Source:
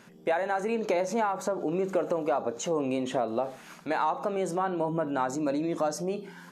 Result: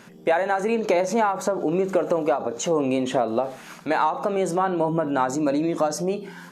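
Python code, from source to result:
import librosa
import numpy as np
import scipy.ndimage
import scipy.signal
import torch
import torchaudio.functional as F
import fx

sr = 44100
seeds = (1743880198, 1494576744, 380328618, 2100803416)

y = fx.end_taper(x, sr, db_per_s=140.0)
y = y * 10.0 ** (6.5 / 20.0)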